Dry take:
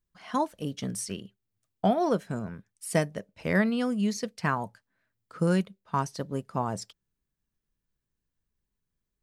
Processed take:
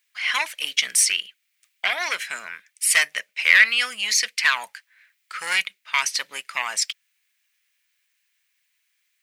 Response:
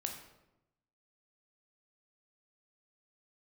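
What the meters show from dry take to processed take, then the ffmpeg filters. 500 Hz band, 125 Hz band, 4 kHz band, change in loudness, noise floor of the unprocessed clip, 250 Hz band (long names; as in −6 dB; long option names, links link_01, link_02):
−11.5 dB, below −30 dB, +20.0 dB, +9.0 dB, −85 dBFS, below −25 dB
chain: -af "asoftclip=type=tanh:threshold=-18dB,apsyclip=27dB,highpass=frequency=2200:width_type=q:width=3.3,volume=-9.5dB"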